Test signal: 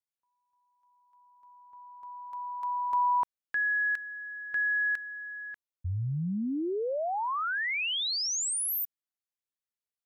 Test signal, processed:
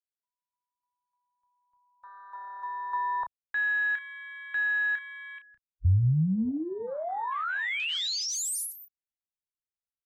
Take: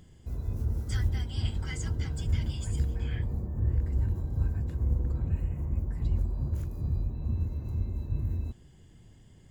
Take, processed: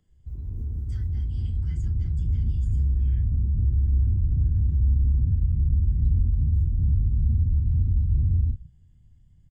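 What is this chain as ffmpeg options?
ffmpeg -i in.wav -filter_complex "[0:a]afwtdn=0.02,aecho=1:1:13|32:0.133|0.355,acrossover=split=260|1300[link_01][link_02][link_03];[link_01]acompressor=threshold=-34dB:ratio=6:attack=1.1:release=46:knee=6:detection=rms[link_04];[link_04][link_02][link_03]amix=inputs=3:normalize=0,asubboost=boost=9.5:cutoff=130" out.wav

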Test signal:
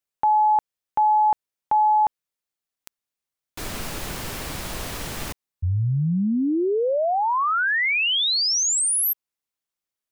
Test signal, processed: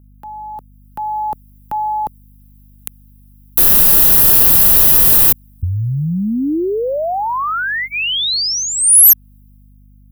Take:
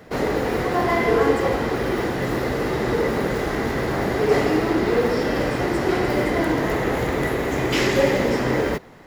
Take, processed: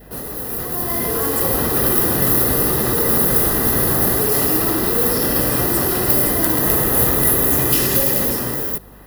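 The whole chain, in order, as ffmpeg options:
ffmpeg -i in.wav -filter_complex "[0:a]adynamicequalizer=threshold=0.00891:dfrequency=1200:dqfactor=5.2:tfrequency=1200:tqfactor=5.2:attack=5:release=100:ratio=0.375:range=2.5:mode=boostabove:tftype=bell,acrossover=split=590|3900[link_01][link_02][link_03];[link_01]acompressor=threshold=-29dB:ratio=6[link_04];[link_02]acompressor=threshold=-41dB:ratio=2[link_05];[link_03]acompressor=threshold=-34dB:ratio=4[link_06];[link_04][link_05][link_06]amix=inputs=3:normalize=0,acrossover=split=230|5800[link_07][link_08][link_09];[link_08]alimiter=level_in=3.5dB:limit=-24dB:level=0:latency=1,volume=-3.5dB[link_10];[link_07][link_10][link_09]amix=inputs=3:normalize=0,dynaudnorm=framelen=170:gausssize=11:maxgain=12dB,aexciter=amount=11.8:drive=3.7:freq=9900,volume=4dB,asoftclip=hard,volume=-4dB,aeval=exprs='val(0)+0.00631*(sin(2*PI*50*n/s)+sin(2*PI*2*50*n/s)/2+sin(2*PI*3*50*n/s)/3+sin(2*PI*4*50*n/s)/4+sin(2*PI*5*50*n/s)/5)':channel_layout=same,asuperstop=centerf=2200:order=4:qfactor=7" out.wav

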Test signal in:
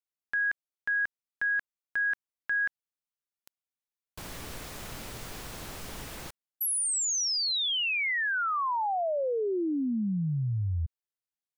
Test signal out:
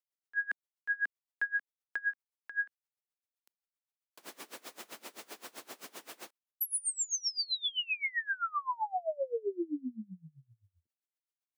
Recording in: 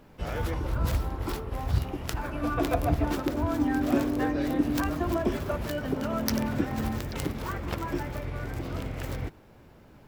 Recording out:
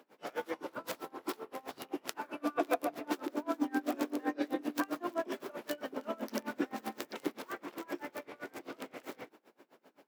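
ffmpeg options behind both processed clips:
ffmpeg -i in.wav -af "highpass=frequency=270:width=0.5412,highpass=frequency=270:width=1.3066,aeval=exprs='val(0)*pow(10,-26*(0.5-0.5*cos(2*PI*7.7*n/s))/20)':channel_layout=same" out.wav

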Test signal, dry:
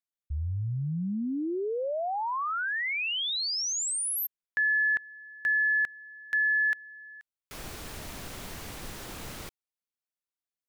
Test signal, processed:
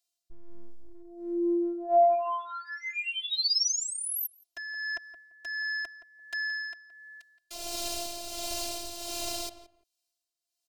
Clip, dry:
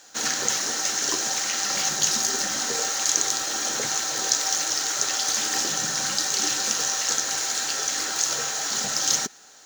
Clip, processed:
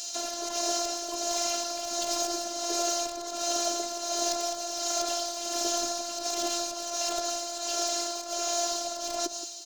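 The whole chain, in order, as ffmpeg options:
ffmpeg -i in.wav -filter_complex "[0:a]bandreject=frequency=3500:width=16,aeval=exprs='0.631*(cos(1*acos(clip(val(0)/0.631,-1,1)))-cos(1*PI/2))+0.224*(cos(7*acos(clip(val(0)/0.631,-1,1)))-cos(7*PI/2))':channel_layout=same,equalizer=frequency=610:width_type=o:width=0.53:gain=15,acrossover=split=260|1600[link_01][link_02][link_03];[link_03]acompressor=threshold=-36dB:ratio=12:attack=0.14:release=154:detection=peak[link_04];[link_01][link_02][link_04]amix=inputs=3:normalize=0,tremolo=f=1.4:d=0.57,aexciter=amount=15.7:drive=3.3:freq=2800,aemphasis=mode=reproduction:type=75kf,afftfilt=real='hypot(re,im)*cos(PI*b)':imag='0':win_size=512:overlap=0.75,asplit=2[link_05][link_06];[link_06]adelay=171,lowpass=frequency=1700:poles=1,volume=-11.5dB,asplit=2[link_07][link_08];[link_08]adelay=171,lowpass=frequency=1700:poles=1,volume=0.19[link_09];[link_07][link_09]amix=inputs=2:normalize=0[link_10];[link_05][link_10]amix=inputs=2:normalize=0" out.wav

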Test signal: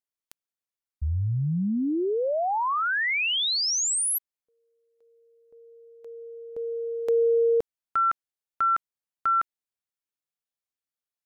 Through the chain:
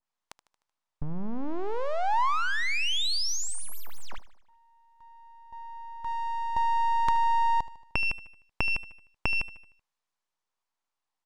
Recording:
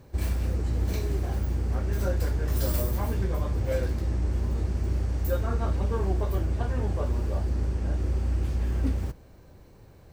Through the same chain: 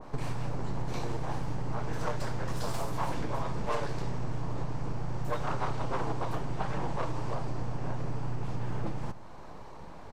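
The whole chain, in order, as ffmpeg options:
ffmpeg -i in.wav -filter_complex "[0:a]acompressor=threshold=-32dB:ratio=12:attack=11:release=763:knee=6:detection=peak,aeval=exprs='abs(val(0))':channel_layout=same,lowpass=7400,equalizer=frequency=950:width=1.4:gain=11,asplit=2[link_01][link_02];[link_02]aecho=0:1:76|152|228|304|380:0.141|0.0763|0.0412|0.0222|0.012[link_03];[link_01][link_03]amix=inputs=2:normalize=0,adynamicequalizer=threshold=0.00355:dfrequency=1900:dqfactor=0.7:tfrequency=1900:tqfactor=0.7:attack=5:release=100:ratio=0.375:range=3.5:mode=boostabove:tftype=highshelf,volume=5.5dB" out.wav

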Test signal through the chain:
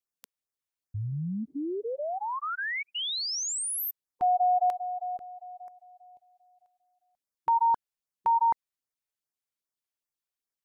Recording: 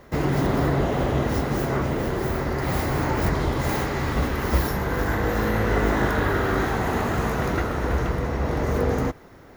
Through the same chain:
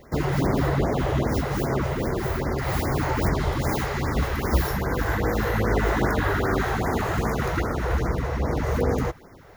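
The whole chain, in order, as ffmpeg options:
ffmpeg -i in.wav -af "afftfilt=real='re*(1-between(b*sr/1024,210*pow(3500/210,0.5+0.5*sin(2*PI*2.5*pts/sr))/1.41,210*pow(3500/210,0.5+0.5*sin(2*PI*2.5*pts/sr))*1.41))':imag='im*(1-between(b*sr/1024,210*pow(3500/210,0.5+0.5*sin(2*PI*2.5*pts/sr))/1.41,210*pow(3500/210,0.5+0.5*sin(2*PI*2.5*pts/sr))*1.41))':win_size=1024:overlap=0.75" out.wav

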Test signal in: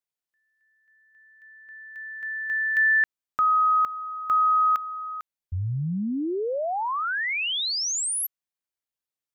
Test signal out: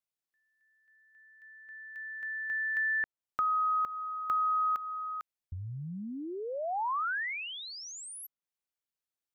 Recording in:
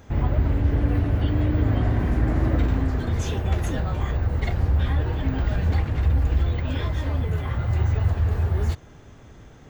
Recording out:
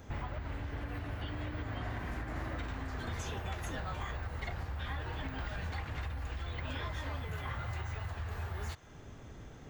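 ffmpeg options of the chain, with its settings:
ffmpeg -i in.wav -filter_complex "[0:a]alimiter=limit=-15dB:level=0:latency=1:release=262,acrossover=split=770|1800[link_01][link_02][link_03];[link_01]acompressor=threshold=-36dB:ratio=4[link_04];[link_02]acompressor=threshold=-28dB:ratio=4[link_05];[link_03]acompressor=threshold=-43dB:ratio=4[link_06];[link_04][link_05][link_06]amix=inputs=3:normalize=0,volume=-3.5dB" out.wav

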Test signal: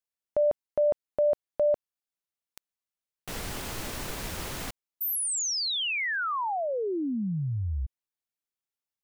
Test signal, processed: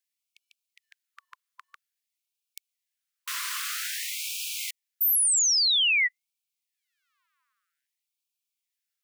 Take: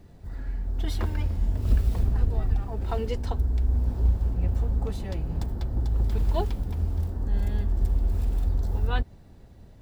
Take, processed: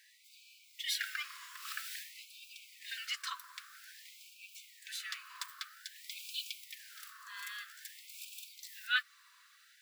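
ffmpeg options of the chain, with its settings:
ffmpeg -i in.wav -filter_complex "[0:a]acrossover=split=440|530[link_01][link_02][link_03];[link_01]acompressor=threshold=-31dB:ratio=6:attack=0.11:release=86:knee=6:detection=rms[link_04];[link_04][link_02][link_03]amix=inputs=3:normalize=0,afftfilt=real='re*gte(b*sr/1024,970*pow(2300/970,0.5+0.5*sin(2*PI*0.51*pts/sr)))':imag='im*gte(b*sr/1024,970*pow(2300/970,0.5+0.5*sin(2*PI*0.51*pts/sr)))':win_size=1024:overlap=0.75,volume=7dB" out.wav

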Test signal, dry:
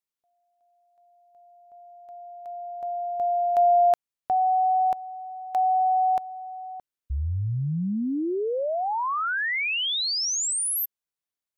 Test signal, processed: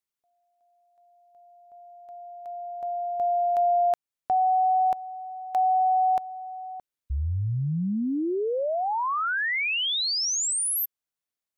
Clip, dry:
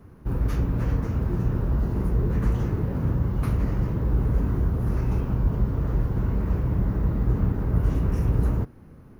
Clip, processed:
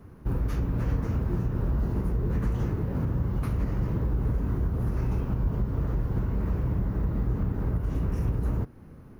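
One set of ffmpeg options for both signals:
ffmpeg -i in.wav -af "alimiter=limit=-18.5dB:level=0:latency=1:release=231" out.wav

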